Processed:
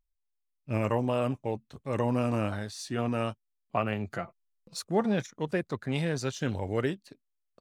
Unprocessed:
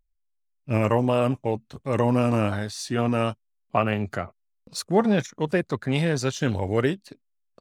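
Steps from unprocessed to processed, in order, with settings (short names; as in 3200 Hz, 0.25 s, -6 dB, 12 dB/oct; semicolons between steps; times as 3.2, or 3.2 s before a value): 4.14–4.79 comb 5.9 ms, depth 56%; gain -6.5 dB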